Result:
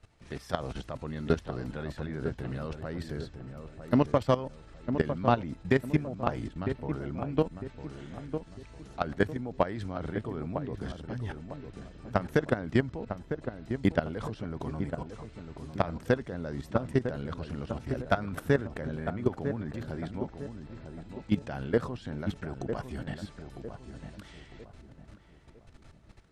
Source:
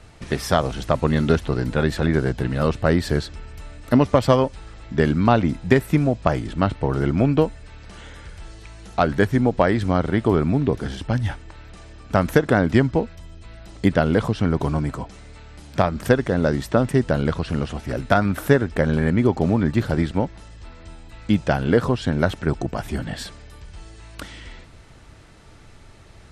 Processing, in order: treble shelf 11 kHz -6 dB; level held to a coarse grid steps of 15 dB; on a send: filtered feedback delay 953 ms, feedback 40%, low-pass 1.2 kHz, level -7.5 dB; on the sum: trim -6 dB

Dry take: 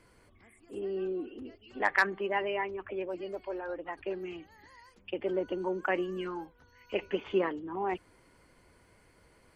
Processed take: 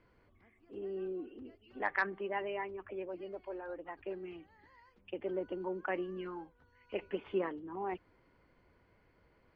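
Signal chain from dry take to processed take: distance through air 240 m; trim -5 dB

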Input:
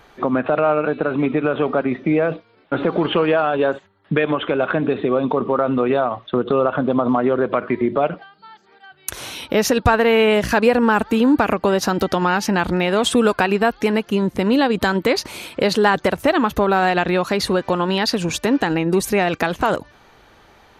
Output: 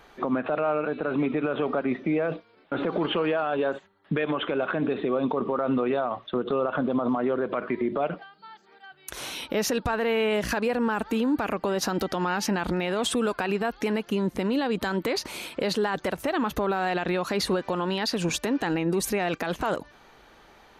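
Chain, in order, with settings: peaking EQ 96 Hz -9 dB 0.71 oct; peak limiter -14 dBFS, peak gain reduction 11 dB; trim -3.5 dB

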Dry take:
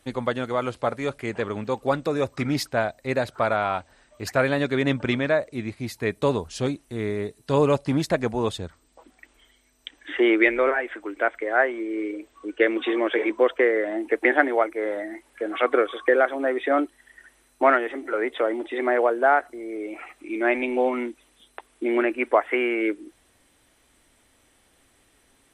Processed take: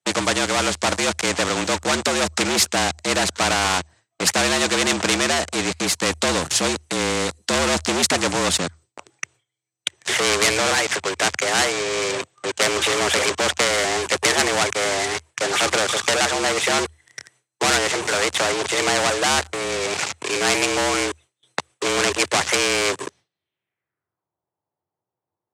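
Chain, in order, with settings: waveshaping leveller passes 5; low-pass sweep 7.3 kHz -> 830 Hz, 23.01–24.32 s; frequency shift +78 Hz; gate with hold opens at -52 dBFS; spectrum-flattening compressor 2:1; trim -7.5 dB

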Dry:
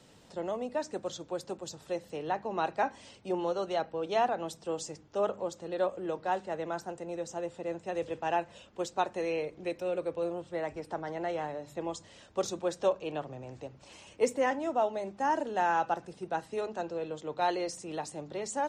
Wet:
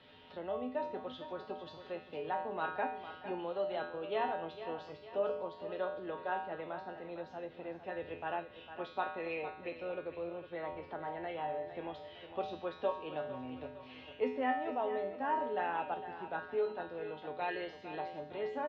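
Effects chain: steep low-pass 3.6 kHz 36 dB/octave; feedback comb 85 Hz, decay 0.57 s, harmonics odd, mix 90%; in parallel at -2.5 dB: compression, threshold -42 dBFS, peak gain reduction 8 dB; on the sum: feedback delay 456 ms, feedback 38%, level -12 dB; tape noise reduction on one side only encoder only; trim +4.5 dB

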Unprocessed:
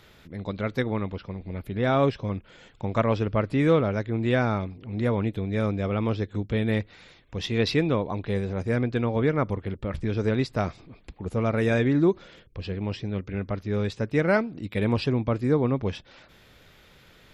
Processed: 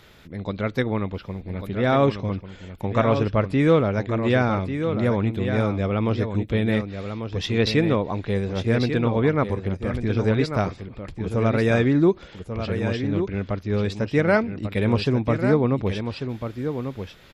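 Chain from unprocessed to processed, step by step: delay 1143 ms -8 dB; trim +3 dB

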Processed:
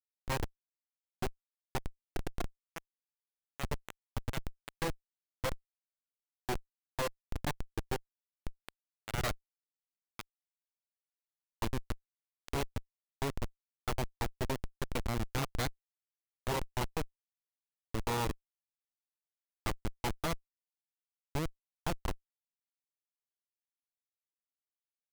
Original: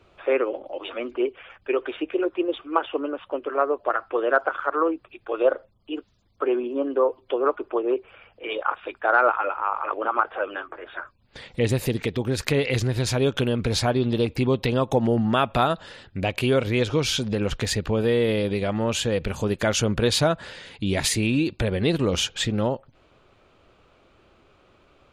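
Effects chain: block-companded coder 5-bit; Chebyshev shaper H 2 -13 dB, 3 -6 dB, 5 -17 dB, 8 -19 dB, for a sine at -4 dBFS; Schmitt trigger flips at -30 dBFS; trim +1.5 dB

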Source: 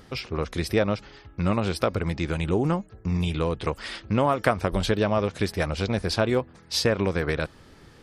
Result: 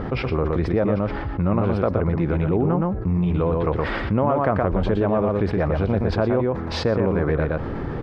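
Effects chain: low-pass 1.2 kHz 12 dB/octave; delay 119 ms -5.5 dB; level flattener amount 70%

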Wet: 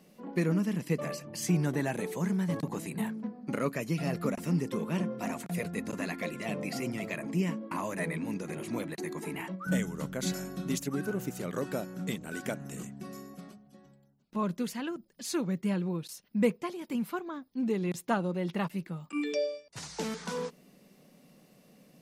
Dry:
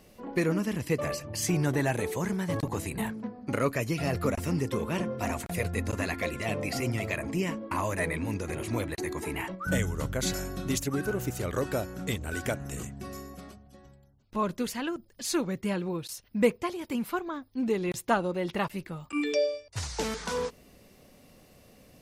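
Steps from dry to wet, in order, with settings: resonant low shelf 120 Hz -12 dB, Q 3; trim -5 dB

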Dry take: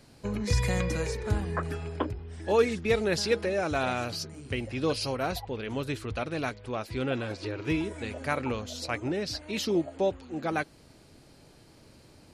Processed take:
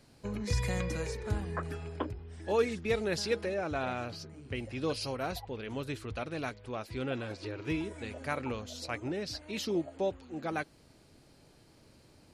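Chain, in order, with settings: 3.54–4.55 s: low-pass 2.9 kHz 6 dB/octave; trim -5 dB

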